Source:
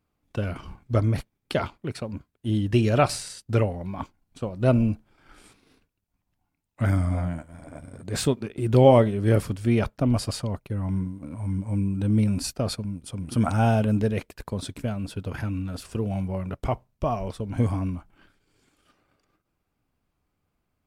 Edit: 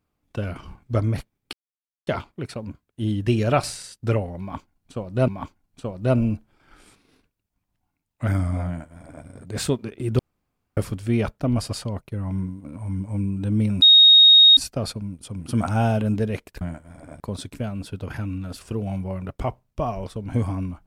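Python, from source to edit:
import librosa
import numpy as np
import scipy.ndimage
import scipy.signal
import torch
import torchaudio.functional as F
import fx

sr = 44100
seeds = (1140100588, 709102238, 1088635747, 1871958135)

y = fx.edit(x, sr, fx.insert_silence(at_s=1.53, length_s=0.54),
    fx.repeat(start_s=3.86, length_s=0.88, count=2),
    fx.duplicate(start_s=7.25, length_s=0.59, to_s=14.44),
    fx.room_tone_fill(start_s=8.77, length_s=0.58),
    fx.insert_tone(at_s=12.4, length_s=0.75, hz=3740.0, db=-8.0), tone=tone)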